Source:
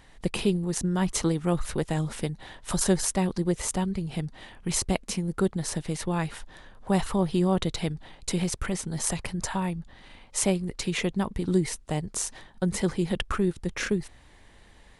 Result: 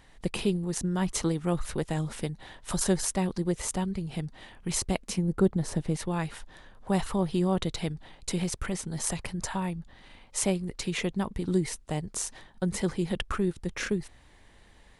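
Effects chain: 5.18–5.97 tilt shelf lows +5 dB, about 1100 Hz; gain -2.5 dB

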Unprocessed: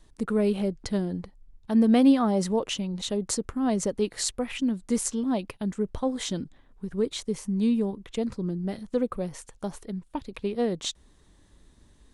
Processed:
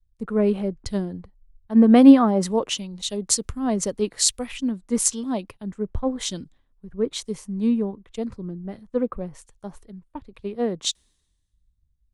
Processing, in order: bell 1100 Hz +2.5 dB 0.24 oct; three-band expander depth 100%; gain +1 dB

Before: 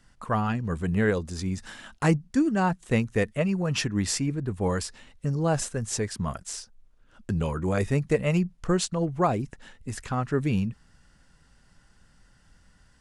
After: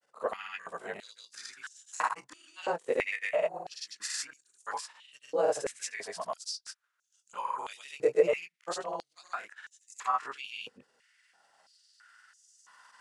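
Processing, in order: short-time reversal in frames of 58 ms; recorder AGC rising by 5 dB/s; grains, spray 0.105 s, pitch spread up and down by 0 st; stepped high-pass 3 Hz 480–6500 Hz; gain -3.5 dB

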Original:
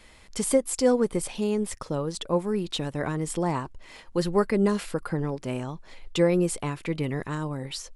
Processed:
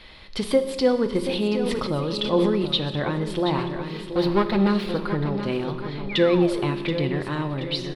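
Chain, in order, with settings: 3.58–4.87 minimum comb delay 5.6 ms; resonant high shelf 5400 Hz -11 dB, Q 3; feedback echo 0.728 s, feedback 43%, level -11 dB; in parallel at -2.5 dB: compressor, threshold -33 dBFS, peak gain reduction 16.5 dB; 6.09–6.76 on the sum: painted sound fall 230–2500 Hz -35 dBFS; on a send at -8 dB: reverb RT60 1.5 s, pre-delay 3 ms; 1.29–2.66 on the sum: sustainer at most 21 dB/s

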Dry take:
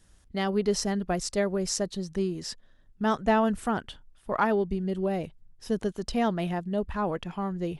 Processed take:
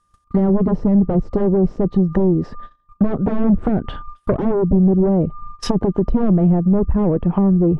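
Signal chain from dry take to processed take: whine 1200 Hz -54 dBFS; gate -49 dBFS, range -31 dB; sine folder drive 13 dB, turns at -12.5 dBFS; treble ducked by the level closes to 380 Hz, closed at -15.5 dBFS; gain +4 dB

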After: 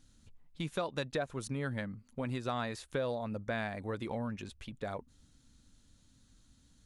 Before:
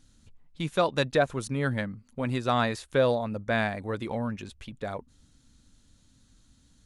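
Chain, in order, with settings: compressor 3:1, threshold -30 dBFS, peak gain reduction 9 dB; gain -3.5 dB

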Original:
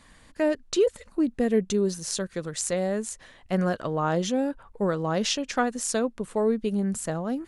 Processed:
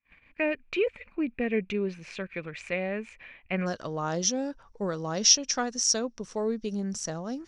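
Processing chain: gate -52 dBFS, range -34 dB; synth low-pass 2400 Hz, resonance Q 14, from 3.66 s 5700 Hz; gain -5.5 dB

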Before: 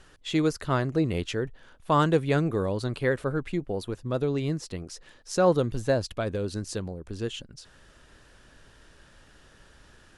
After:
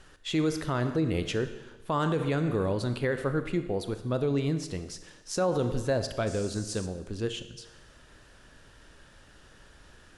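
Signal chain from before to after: Schroeder reverb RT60 1.1 s, combs from 25 ms, DRR 10 dB; limiter -18.5 dBFS, peak gain reduction 8.5 dB; 6.26–6.85 band noise 4500–8900 Hz -47 dBFS

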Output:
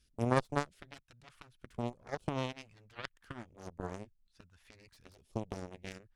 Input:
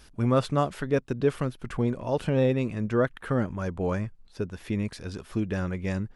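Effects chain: dynamic EQ 230 Hz, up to -5 dB, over -37 dBFS, Q 0.79; in parallel at 0 dB: compressor, threshold -30 dBFS, peak gain reduction 10.5 dB; on the sum: phaser stages 2, 0.59 Hz, lowest notch 320–1800 Hz; added harmonics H 3 -9 dB, 6 -44 dB, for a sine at -12.5 dBFS

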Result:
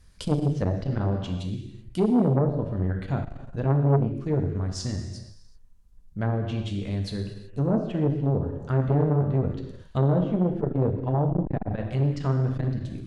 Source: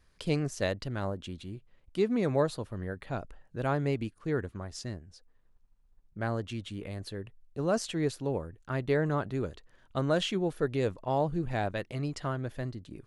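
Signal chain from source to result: treble ducked by the level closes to 680 Hz, closed at -26 dBFS; tone controls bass +9 dB, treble +8 dB; reverb, pre-delay 3 ms, DRR 2.5 dB; core saturation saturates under 450 Hz; gain +2 dB

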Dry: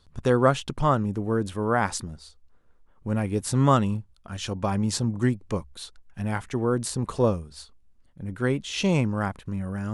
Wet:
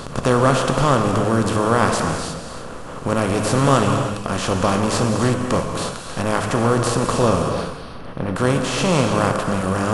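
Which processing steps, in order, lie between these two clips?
per-bin compression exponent 0.4; 7.49–8.36 running mean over 6 samples; non-linear reverb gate 0.36 s flat, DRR 3 dB

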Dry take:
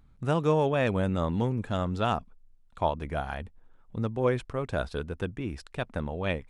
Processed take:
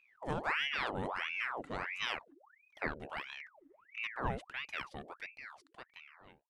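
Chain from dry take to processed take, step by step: ending faded out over 1.96 s; 3.22–3.96 envelope phaser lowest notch 510 Hz, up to 2200 Hz, full sweep at -33 dBFS; ring modulator with a swept carrier 1400 Hz, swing 80%, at 1.5 Hz; gain -8 dB

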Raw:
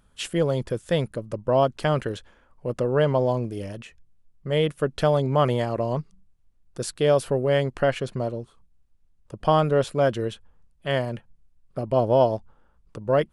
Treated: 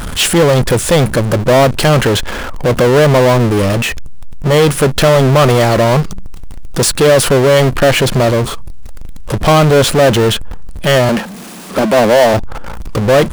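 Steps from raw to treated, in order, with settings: 11.09–12.34 steep high-pass 180 Hz 72 dB/oct; power-law curve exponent 0.35; gain +4.5 dB

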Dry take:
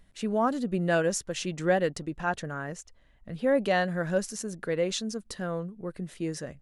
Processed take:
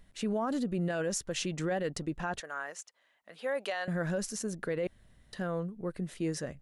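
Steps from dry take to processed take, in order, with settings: 2.4–3.88 HPF 710 Hz 12 dB/oct; limiter -24 dBFS, peak gain reduction 11.5 dB; 4.87–5.33 room tone

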